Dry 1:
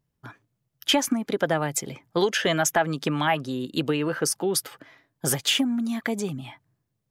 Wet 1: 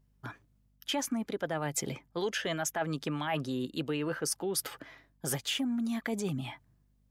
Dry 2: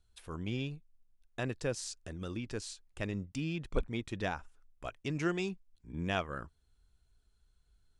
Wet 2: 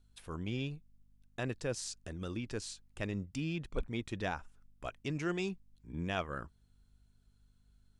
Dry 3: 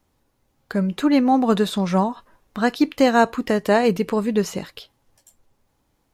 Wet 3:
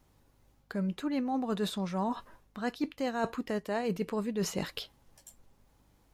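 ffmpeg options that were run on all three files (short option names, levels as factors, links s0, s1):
-af "areverse,acompressor=threshold=0.0316:ratio=6,areverse,aeval=exprs='val(0)+0.000398*(sin(2*PI*50*n/s)+sin(2*PI*2*50*n/s)/2+sin(2*PI*3*50*n/s)/3+sin(2*PI*4*50*n/s)/4+sin(2*PI*5*50*n/s)/5)':c=same"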